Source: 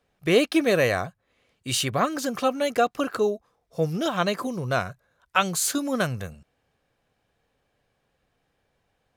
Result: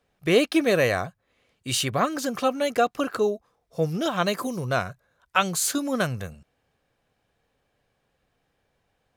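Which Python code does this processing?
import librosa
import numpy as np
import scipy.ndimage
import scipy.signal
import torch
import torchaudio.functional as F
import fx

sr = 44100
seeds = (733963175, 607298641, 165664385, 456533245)

y = fx.high_shelf(x, sr, hz=fx.line((4.23, 9800.0), (4.64, 5000.0)), db=9.0, at=(4.23, 4.64), fade=0.02)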